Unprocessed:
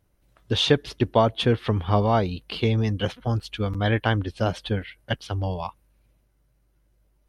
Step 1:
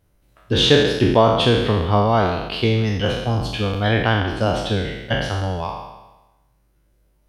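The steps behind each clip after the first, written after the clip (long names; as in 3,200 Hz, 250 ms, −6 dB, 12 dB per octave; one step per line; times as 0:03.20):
peak hold with a decay on every bin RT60 1.08 s
level +2.5 dB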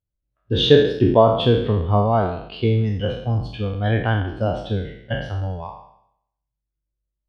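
every bin expanded away from the loudest bin 1.5 to 1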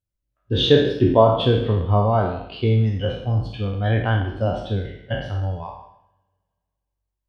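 coupled-rooms reverb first 0.57 s, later 2.4 s, from −28 dB, DRR 7.5 dB
level −1.5 dB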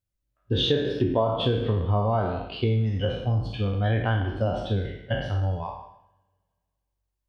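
downward compressor 4 to 1, threshold −21 dBFS, peak gain reduction 10.5 dB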